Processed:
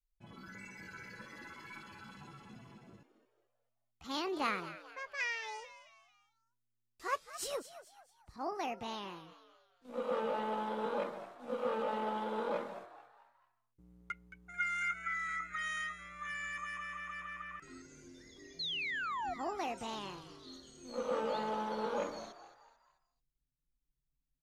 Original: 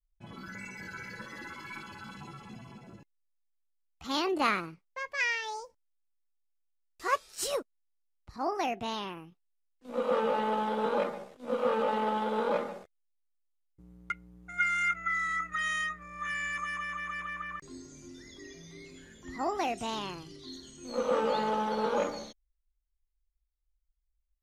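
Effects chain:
sound drawn into the spectrogram fall, 0:18.59–0:19.34, 670–4,400 Hz −31 dBFS
echo with shifted repeats 220 ms, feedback 41%, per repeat +120 Hz, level −14 dB
level −7 dB

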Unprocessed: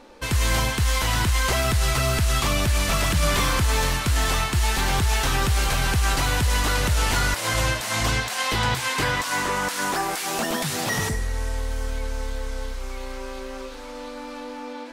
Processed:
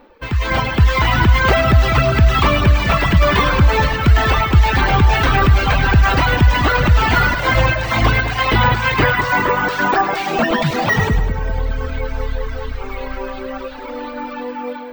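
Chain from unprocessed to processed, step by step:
reverb reduction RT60 0.63 s
low-pass filter 2,700 Hz 12 dB per octave
reverb reduction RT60 2 s
automatic gain control gain up to 11.5 dB
on a send: echo with a time of its own for lows and highs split 990 Hz, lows 198 ms, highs 104 ms, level −8.5 dB
on the sum: bad sample-rate conversion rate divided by 2×, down filtered, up hold
level +1.5 dB

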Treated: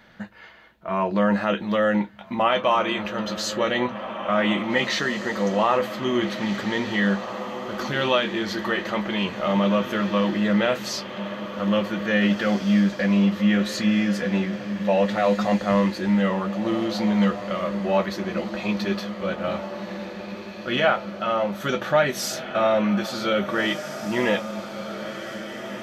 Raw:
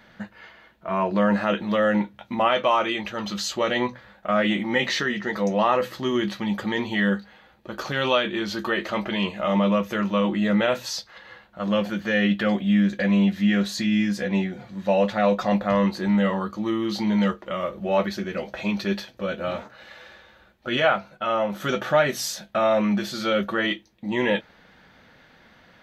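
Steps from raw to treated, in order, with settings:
feedback delay with all-pass diffusion 1,771 ms, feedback 54%, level −10 dB

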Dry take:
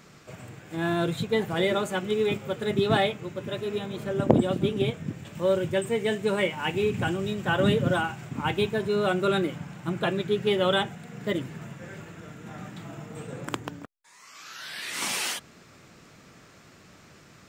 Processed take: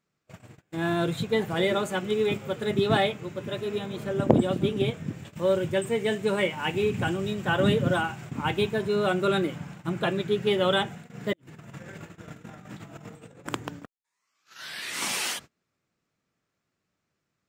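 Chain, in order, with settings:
noise gate −41 dBFS, range −28 dB
0:11.33–0:13.47: compressor whose output falls as the input rises −44 dBFS, ratio −0.5

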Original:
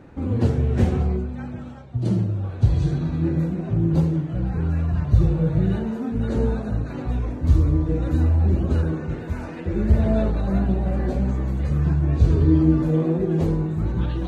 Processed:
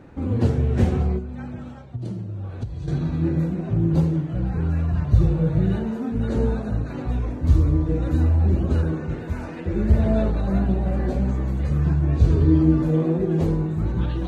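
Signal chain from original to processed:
0:01.18–0:02.88: downward compressor 10 to 1, threshold −27 dBFS, peak gain reduction 16.5 dB

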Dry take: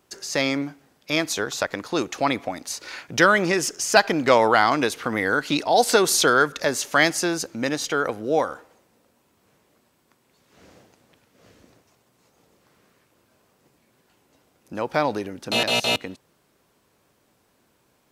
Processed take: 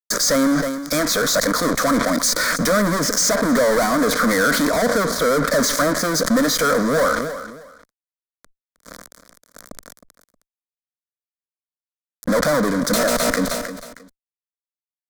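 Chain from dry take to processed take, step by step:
treble cut that deepens with the level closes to 890 Hz, closed at −15 dBFS
dynamic equaliser 2,700 Hz, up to +4 dB, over −42 dBFS, Q 2.5
in parallel at −2 dB: downward compressor, threshold −31 dBFS, peak gain reduction 17 dB
on the sum: tempo change 1.2×
fuzz pedal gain 38 dB, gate −41 dBFS
phaser with its sweep stopped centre 550 Hz, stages 8
on a send: repeating echo 314 ms, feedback 21%, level −23 dB
on the sum: level that may fall only so fast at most 43 dB per second

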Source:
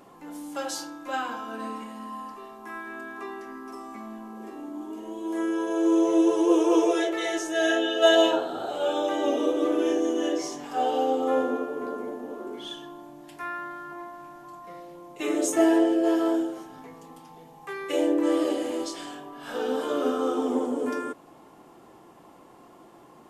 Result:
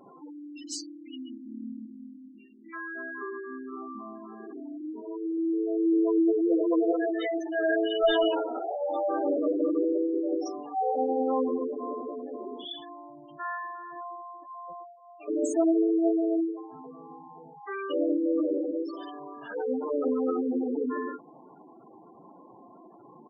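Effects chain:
0:00.53–0:02.73: time-frequency box erased 370–1,800 Hz
on a send: ambience of single reflections 39 ms −6 dB, 62 ms −15 dB
on the sum: asymmetric clip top −25 dBFS
0:14.84–0:15.28: formant filter a
gate on every frequency bin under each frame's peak −10 dB strong

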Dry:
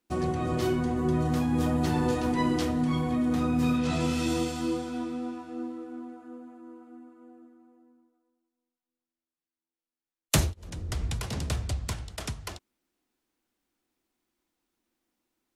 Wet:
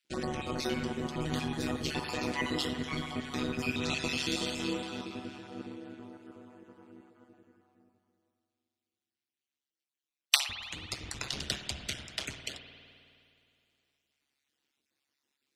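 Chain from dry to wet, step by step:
time-frequency cells dropped at random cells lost 31%
meter weighting curve D
amplitude modulation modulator 140 Hz, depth 70%
spring reverb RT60 2.5 s, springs 52 ms, chirp 50 ms, DRR 6.5 dB
level −1.5 dB

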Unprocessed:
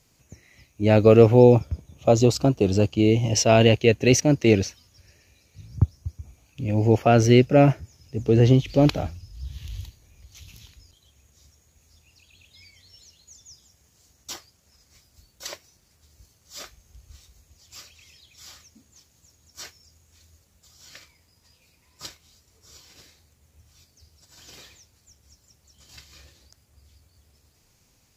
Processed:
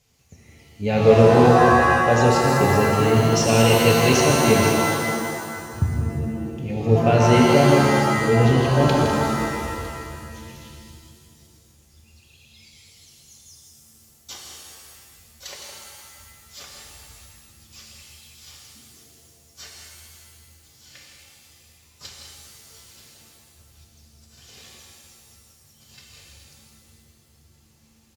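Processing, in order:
parametric band 3,100 Hz +3.5 dB
notch comb filter 320 Hz
loudspeakers that aren't time-aligned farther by 56 metres −9 dB, 69 metres −11 dB
reverb with rising layers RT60 2 s, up +7 semitones, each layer −2 dB, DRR 0 dB
level −2.5 dB

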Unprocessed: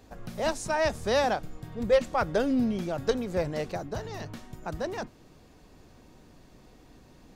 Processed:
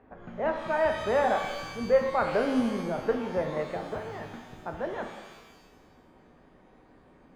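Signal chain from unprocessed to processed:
low-pass filter 2,000 Hz 24 dB per octave
low-shelf EQ 150 Hz −11.5 dB
reverb with rising layers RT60 1.2 s, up +12 semitones, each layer −8 dB, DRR 4 dB

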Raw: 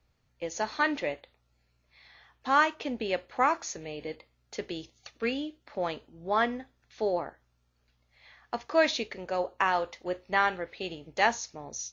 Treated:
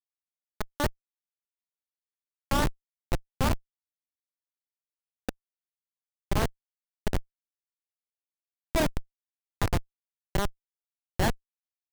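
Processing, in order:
tape wow and flutter 76 cents
feedback delay network reverb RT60 2.3 s, low-frequency decay 1.3×, high-frequency decay 0.4×, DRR 8.5 dB
comparator with hysteresis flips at −19.5 dBFS
level +8 dB

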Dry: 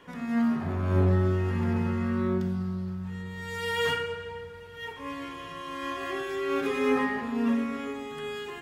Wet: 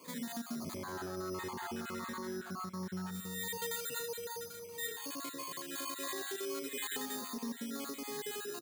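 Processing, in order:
time-frequency cells dropped at random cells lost 35%
high-pass filter 220 Hz 12 dB per octave
bad sample-rate conversion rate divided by 8×, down filtered, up hold
downward compressor 6 to 1, threshold −36 dBFS, peak gain reduction 11.5 dB
soft clipping −29 dBFS, distortion −24 dB
0:00.76–0:03.11: parametric band 1,200 Hz +14.5 dB 2.1 octaves
brickwall limiter −32.5 dBFS, peak gain reduction 10.5 dB
high-shelf EQ 4,800 Hz +9.5 dB
single-tap delay 184 ms −15 dB
phaser whose notches keep moving one way falling 1.5 Hz

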